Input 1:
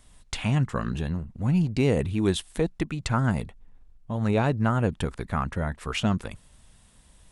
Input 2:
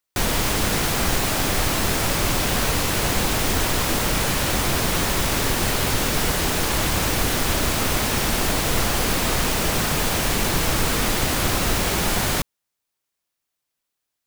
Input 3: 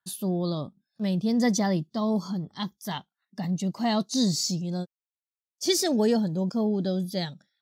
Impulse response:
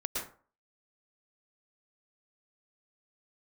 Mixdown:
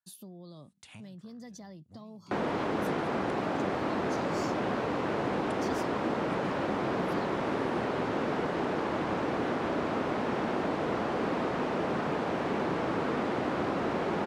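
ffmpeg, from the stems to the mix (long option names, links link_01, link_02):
-filter_complex "[0:a]highshelf=frequency=5300:gain=9,alimiter=limit=-20dB:level=0:latency=1:release=153,adelay=500,volume=-15dB[link_01];[1:a]highpass=270,lowpass=1200,adelay=2150,volume=0dB[link_02];[2:a]acompressor=threshold=-33dB:ratio=2,volume=-11.5dB,asplit=2[link_03][link_04];[link_04]apad=whole_len=344520[link_05];[link_01][link_05]sidechaincompress=threshold=-52dB:ratio=8:attack=6.7:release=411[link_06];[link_06][link_03]amix=inputs=2:normalize=0,highpass=frequency=88:width=0.5412,highpass=frequency=88:width=1.3066,acompressor=threshold=-43dB:ratio=6,volume=0dB[link_07];[link_02][link_07]amix=inputs=2:normalize=0,acrossover=split=410|3000[link_08][link_09][link_10];[link_09]acompressor=threshold=-32dB:ratio=6[link_11];[link_08][link_11][link_10]amix=inputs=3:normalize=0"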